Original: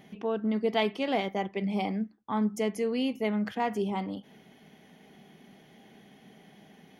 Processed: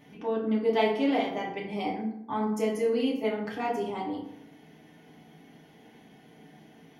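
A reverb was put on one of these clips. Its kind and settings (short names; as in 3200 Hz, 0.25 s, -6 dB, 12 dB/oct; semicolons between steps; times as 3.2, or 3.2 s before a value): FDN reverb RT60 0.75 s, low-frequency decay 1.1×, high-frequency decay 0.55×, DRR -4 dB; gain -4.5 dB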